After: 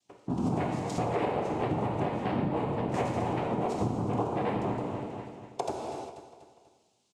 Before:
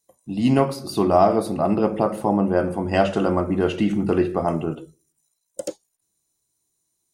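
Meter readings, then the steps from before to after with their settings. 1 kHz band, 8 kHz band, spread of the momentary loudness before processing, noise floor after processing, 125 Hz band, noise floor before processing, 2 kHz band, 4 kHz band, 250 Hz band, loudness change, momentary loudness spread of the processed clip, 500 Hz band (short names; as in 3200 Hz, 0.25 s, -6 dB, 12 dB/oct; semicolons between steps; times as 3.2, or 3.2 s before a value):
-7.5 dB, n/a, 15 LU, -69 dBFS, -5.5 dB, -75 dBFS, -8.0 dB, -10.0 dB, -10.0 dB, -10.5 dB, 9 LU, -10.5 dB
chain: tilt -1.5 dB/oct; vocal rider within 4 dB; noise vocoder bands 4; on a send: feedback echo 0.243 s, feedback 44%, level -17 dB; on the sum: non-linear reverb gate 0.42 s falling, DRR 0.5 dB; dynamic EQ 2900 Hz, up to -4 dB, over -38 dBFS, Q 1.3; compressor 3:1, threshold -32 dBFS, peak gain reduction 17 dB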